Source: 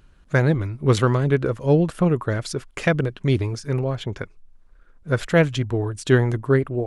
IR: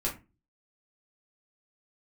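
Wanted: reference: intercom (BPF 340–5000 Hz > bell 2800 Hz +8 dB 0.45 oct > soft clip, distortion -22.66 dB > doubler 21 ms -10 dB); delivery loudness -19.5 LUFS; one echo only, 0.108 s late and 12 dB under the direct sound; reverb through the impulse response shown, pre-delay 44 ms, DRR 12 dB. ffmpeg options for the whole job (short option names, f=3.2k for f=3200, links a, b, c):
-filter_complex "[0:a]aecho=1:1:108:0.251,asplit=2[a][b];[1:a]atrim=start_sample=2205,adelay=44[c];[b][c]afir=irnorm=-1:irlink=0,volume=-17.5dB[d];[a][d]amix=inputs=2:normalize=0,highpass=340,lowpass=5k,equalizer=f=2.8k:t=o:w=0.45:g=8,asoftclip=threshold=-6.5dB,asplit=2[e][f];[f]adelay=21,volume=-10dB[g];[e][g]amix=inputs=2:normalize=0,volume=5.5dB"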